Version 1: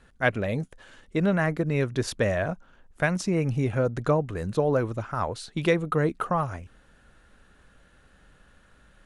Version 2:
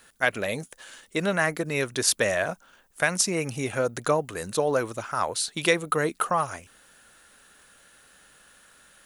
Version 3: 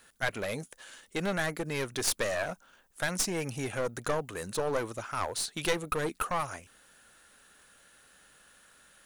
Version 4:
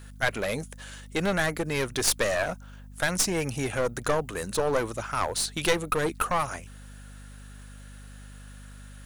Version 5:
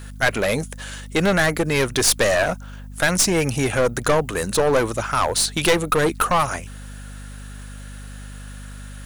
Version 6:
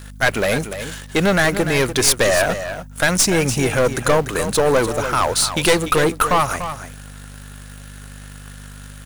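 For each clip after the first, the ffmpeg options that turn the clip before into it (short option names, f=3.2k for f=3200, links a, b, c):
-af "aemphasis=mode=production:type=riaa,alimiter=level_in=9dB:limit=-1dB:release=50:level=0:latency=1,volume=-6.5dB"
-af "aeval=exprs='clip(val(0),-1,0.0473)':c=same,volume=-4dB"
-af "aeval=exprs='val(0)+0.00355*(sin(2*PI*50*n/s)+sin(2*PI*2*50*n/s)/2+sin(2*PI*3*50*n/s)/3+sin(2*PI*4*50*n/s)/4+sin(2*PI*5*50*n/s)/5)':c=same,volume=5dB"
-af "asoftclip=type=tanh:threshold=-17dB,volume=9dB"
-filter_complex "[0:a]asplit=2[a][b];[b]acrusher=bits=4:mix=0:aa=0.000001,volume=-7.5dB[c];[a][c]amix=inputs=2:normalize=0,aecho=1:1:293:0.299,volume=-1dB"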